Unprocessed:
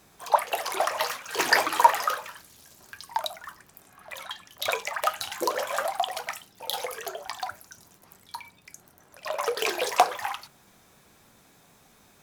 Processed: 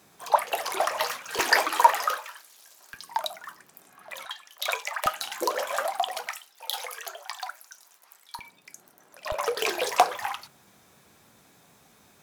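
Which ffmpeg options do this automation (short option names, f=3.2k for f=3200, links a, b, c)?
-af "asetnsamples=n=441:p=0,asendcmd='1.39 highpass f 290;2.17 highpass f 640;2.94 highpass f 180;4.25 highpass f 680;5.06 highpass f 250;6.27 highpass f 860;8.39 highpass f 210;9.32 highpass f 68',highpass=110"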